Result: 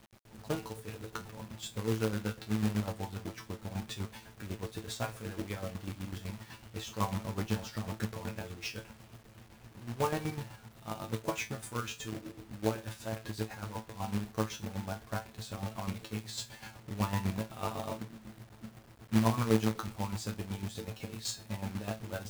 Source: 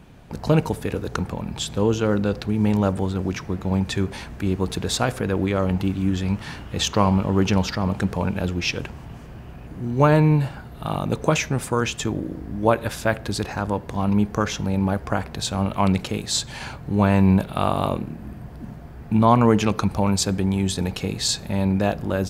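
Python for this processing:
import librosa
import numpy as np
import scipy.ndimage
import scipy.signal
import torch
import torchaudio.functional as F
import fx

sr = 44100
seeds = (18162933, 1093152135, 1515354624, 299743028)

y = fx.chopper(x, sr, hz=8.0, depth_pct=65, duty_pct=40)
y = fx.comb_fb(y, sr, f0_hz=110.0, decay_s=0.19, harmonics='all', damping=0.0, mix_pct=100)
y = fx.quant_companded(y, sr, bits=4)
y = F.gain(torch.from_numpy(y), -4.5).numpy()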